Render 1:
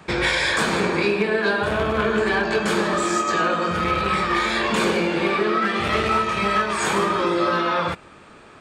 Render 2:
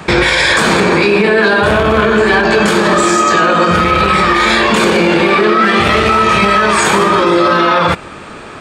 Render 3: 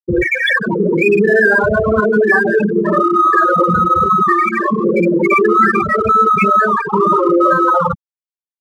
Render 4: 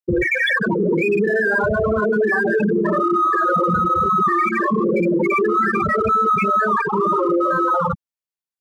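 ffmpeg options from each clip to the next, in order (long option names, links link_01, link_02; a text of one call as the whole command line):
ffmpeg -i in.wav -af "alimiter=level_in=17dB:limit=-1dB:release=50:level=0:latency=1,volume=-1dB" out.wav
ffmpeg -i in.wav -filter_complex "[0:a]afftfilt=real='re*gte(hypot(re,im),1.12)':imag='im*gte(hypot(re,im),1.12)':win_size=1024:overlap=0.75,equalizer=frequency=3900:width=0.73:gain=8.5,asplit=2[link_01][link_02];[link_02]adynamicsmooth=sensitivity=4.5:basefreq=2700,volume=-2.5dB[link_03];[link_01][link_03]amix=inputs=2:normalize=0,volume=-5dB" out.wav
ffmpeg -i in.wav -af "alimiter=limit=-11.5dB:level=0:latency=1:release=35" out.wav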